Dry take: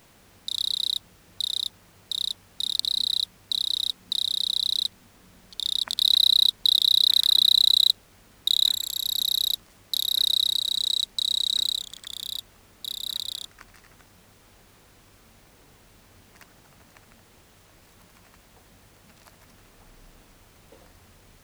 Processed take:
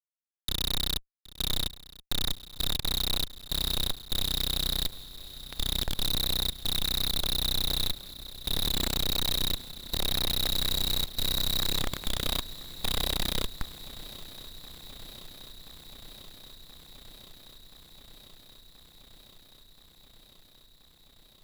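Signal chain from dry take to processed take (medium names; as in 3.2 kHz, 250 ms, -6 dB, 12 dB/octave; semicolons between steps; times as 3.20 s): Schmitt trigger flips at -30 dBFS; shuffle delay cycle 1028 ms, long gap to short 3:1, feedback 78%, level -19.5 dB; trim +1.5 dB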